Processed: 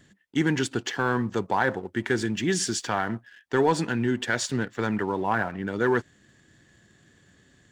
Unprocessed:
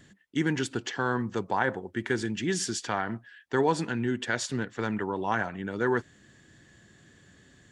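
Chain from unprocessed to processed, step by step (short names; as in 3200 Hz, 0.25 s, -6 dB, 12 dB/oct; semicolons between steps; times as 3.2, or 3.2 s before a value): 5.22–5.67 LPF 2400 Hz; sample leveller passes 1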